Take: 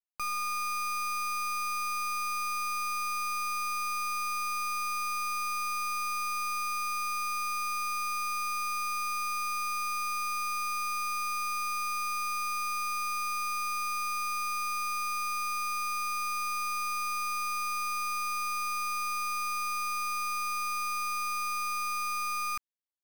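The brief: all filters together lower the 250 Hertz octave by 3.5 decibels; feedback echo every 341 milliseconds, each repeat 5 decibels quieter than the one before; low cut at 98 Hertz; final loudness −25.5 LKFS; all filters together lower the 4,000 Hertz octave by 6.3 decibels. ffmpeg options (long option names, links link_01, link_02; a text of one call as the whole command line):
ffmpeg -i in.wav -af "highpass=98,equalizer=frequency=250:width_type=o:gain=-6,equalizer=frequency=4000:width_type=o:gain=-8.5,aecho=1:1:341|682|1023|1364|1705|2046|2387:0.562|0.315|0.176|0.0988|0.0553|0.031|0.0173,volume=1dB" out.wav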